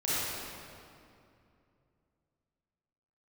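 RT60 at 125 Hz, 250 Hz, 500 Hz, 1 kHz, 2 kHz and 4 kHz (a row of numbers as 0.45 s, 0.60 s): 3.5 s, 3.1 s, 2.7 s, 2.4 s, 2.1 s, 1.7 s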